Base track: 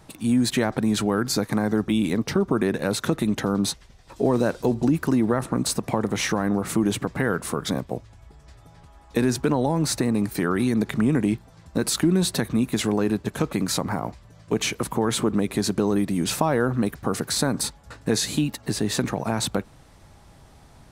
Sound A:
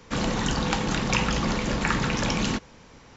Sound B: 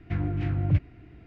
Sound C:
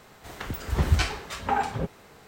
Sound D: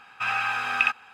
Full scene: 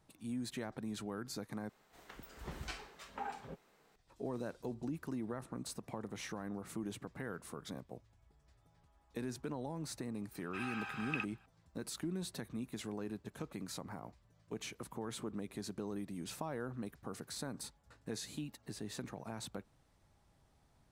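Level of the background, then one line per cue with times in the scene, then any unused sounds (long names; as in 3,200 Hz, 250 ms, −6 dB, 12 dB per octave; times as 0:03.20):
base track −20 dB
0:01.69: overwrite with C −17 dB + parametric band 86 Hz −15 dB 0.85 octaves
0:10.33: mix in D −17.5 dB
not used: A, B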